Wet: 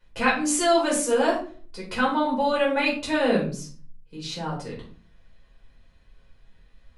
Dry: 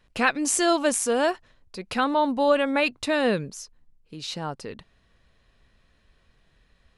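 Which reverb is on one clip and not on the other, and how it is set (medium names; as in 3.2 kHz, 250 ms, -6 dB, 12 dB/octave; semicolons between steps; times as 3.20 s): simulated room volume 310 m³, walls furnished, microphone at 4.9 m; trim -8 dB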